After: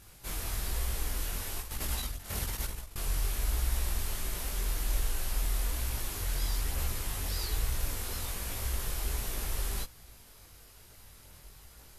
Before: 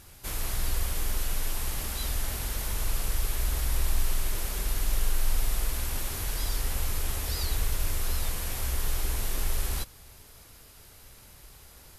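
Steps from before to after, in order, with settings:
0:01.58–0:02.96: compressor whose output falls as the input rises −32 dBFS, ratio −0.5
multi-voice chorus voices 2, 1.1 Hz, delay 20 ms, depth 3 ms

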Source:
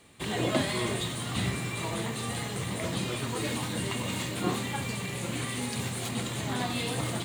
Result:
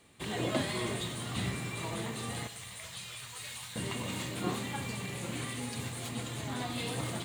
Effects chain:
0:02.47–0:03.76: guitar amp tone stack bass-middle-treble 10-0-10
0:05.53–0:06.78: notch comb filter 190 Hz
tape delay 101 ms, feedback 74%, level −17 dB
level −4.5 dB

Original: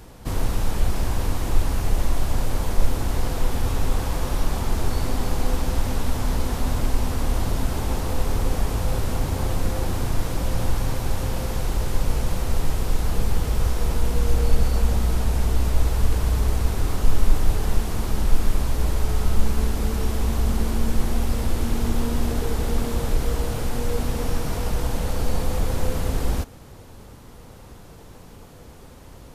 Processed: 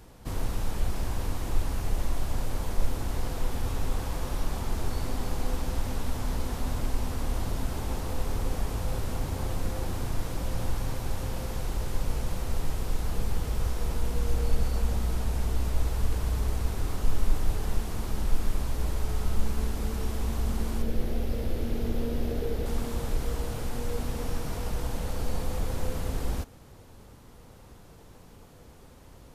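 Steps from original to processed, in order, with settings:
0:20.82–0:22.66: octave-band graphic EQ 500/1,000/8,000 Hz +7/−8/−9 dB
level −7 dB

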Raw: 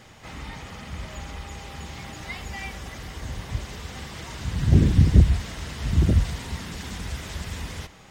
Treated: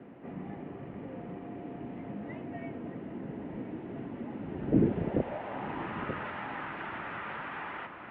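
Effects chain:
notch filter 1,200 Hz, Q 18
in parallel at −9 dB: bit-depth reduction 6 bits, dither triangular
on the sum: dynamic equaliser 1,600 Hz, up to −3 dB, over −49 dBFS, Q 1.4
band-pass filter sweep 350 Hz → 1,300 Hz, 0:04.39–0:06.03
on a send: feedback delay with all-pass diffusion 1,019 ms, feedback 54%, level −13.5 dB
on the sum: single-sideband voice off tune −100 Hz 240–2,900 Hz
level +7.5 dB

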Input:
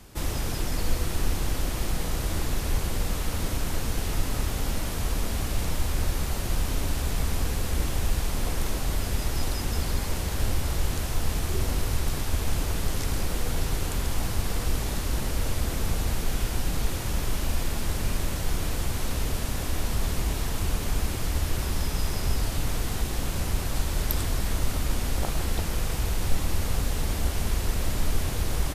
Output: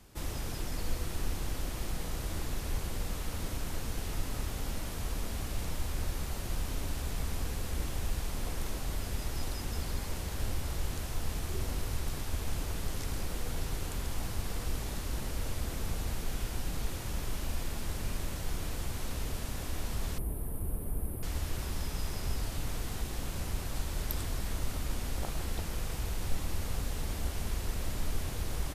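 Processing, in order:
0:20.18–0:21.23: drawn EQ curve 450 Hz 0 dB, 6,700 Hz −28 dB, 9,700 Hz +3 dB
level −8 dB

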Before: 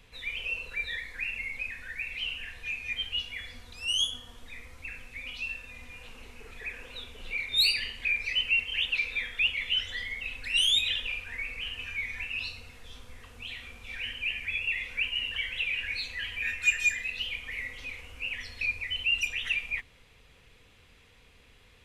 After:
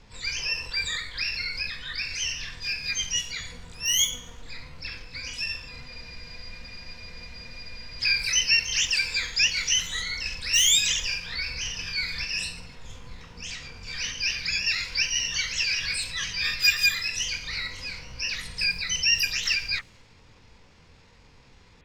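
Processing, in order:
low-pass that shuts in the quiet parts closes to 2,100 Hz, open at −26 dBFS
pitch-shifted copies added −7 semitones −13 dB, +12 semitones 0 dB
frozen spectrum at 0:05.89, 2.12 s
level +2 dB

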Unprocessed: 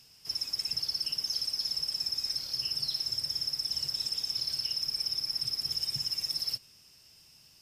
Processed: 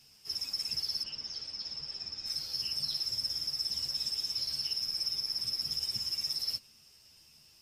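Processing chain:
0:01.02–0:02.26: high-frequency loss of the air 130 metres
string-ensemble chorus
level +1.5 dB

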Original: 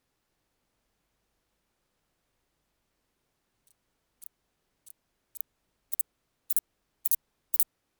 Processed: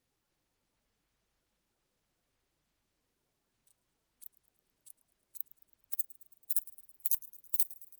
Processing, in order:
spectral magnitudes quantised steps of 15 dB
delay with a high-pass on its return 109 ms, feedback 62%, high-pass 4,500 Hz, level −20 dB
level −3 dB

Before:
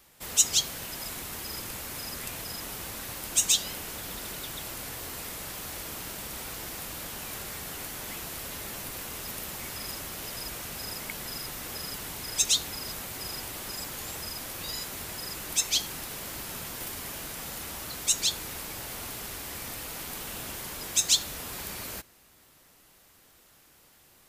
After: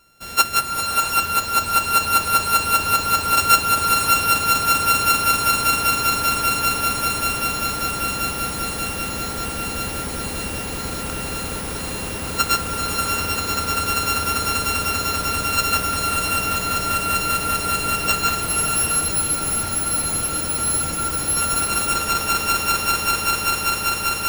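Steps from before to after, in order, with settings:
samples sorted by size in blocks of 32 samples
echo that builds up and dies away 196 ms, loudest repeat 8, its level −5 dB
in parallel at −9 dB: bit-depth reduction 6 bits, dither none
on the sum: frozen spectrum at 0:18.44, 2.90 s
slow-attack reverb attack 650 ms, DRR 2 dB
level +2.5 dB

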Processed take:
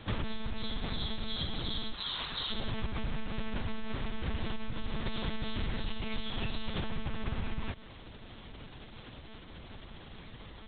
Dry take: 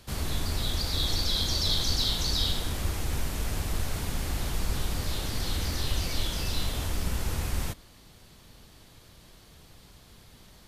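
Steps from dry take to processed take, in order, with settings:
0:01.94–0:02.52: low shelf with overshoot 680 Hz −12.5 dB, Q 1.5
downward compressor 16 to 1, threshold −34 dBFS, peak gain reduction 14.5 dB
one-pitch LPC vocoder at 8 kHz 220 Hz
level +5.5 dB

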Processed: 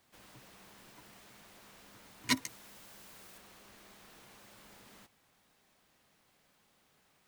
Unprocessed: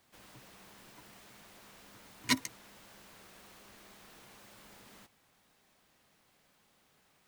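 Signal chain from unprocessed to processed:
0:02.46–0:03.38: high-shelf EQ 5,900 Hz +7 dB
level −1 dB

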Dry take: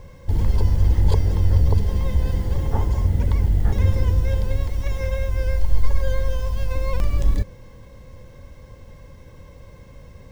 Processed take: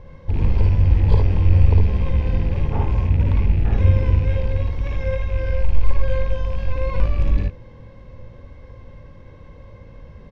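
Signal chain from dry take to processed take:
loose part that buzzes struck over −19 dBFS, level −28 dBFS
high-frequency loss of the air 220 metres
on a send: ambience of single reflections 55 ms −3 dB, 74 ms −7 dB

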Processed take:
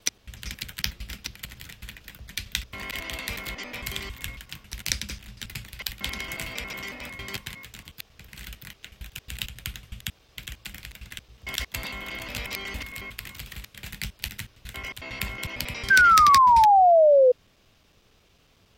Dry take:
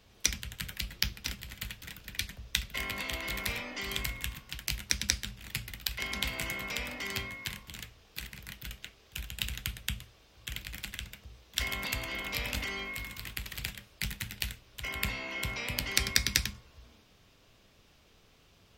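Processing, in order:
slices reordered back to front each 91 ms, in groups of 3
sound drawn into the spectrogram fall, 0:15.90–0:17.32, 490–1,600 Hz −17 dBFS
level +1.5 dB

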